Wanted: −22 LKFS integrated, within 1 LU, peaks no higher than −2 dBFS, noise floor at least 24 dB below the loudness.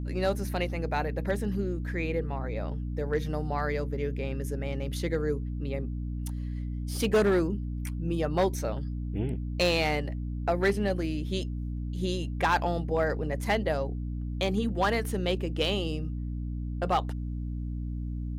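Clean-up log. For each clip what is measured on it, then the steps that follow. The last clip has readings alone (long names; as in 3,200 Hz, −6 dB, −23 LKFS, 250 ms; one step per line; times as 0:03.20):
share of clipped samples 0.4%; peaks flattened at −18.0 dBFS; mains hum 60 Hz; hum harmonics up to 300 Hz; level of the hum −31 dBFS; integrated loudness −30.5 LKFS; sample peak −18.0 dBFS; target loudness −22.0 LKFS
→ clipped peaks rebuilt −18 dBFS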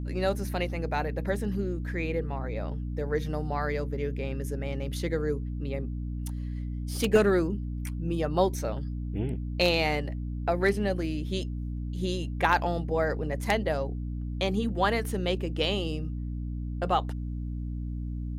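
share of clipped samples 0.0%; mains hum 60 Hz; hum harmonics up to 300 Hz; level of the hum −31 dBFS
→ mains-hum notches 60/120/180/240/300 Hz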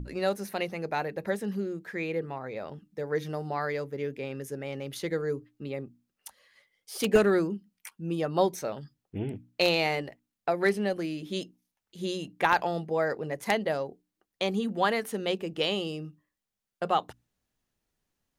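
mains hum none found; integrated loudness −30.5 LKFS; sample peak −9.0 dBFS; target loudness −22.0 LKFS
→ level +8.5 dB
brickwall limiter −2 dBFS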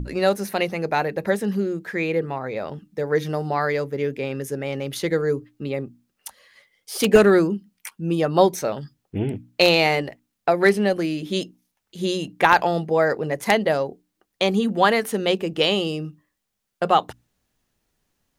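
integrated loudness −22.0 LKFS; sample peak −2.0 dBFS; background noise floor −78 dBFS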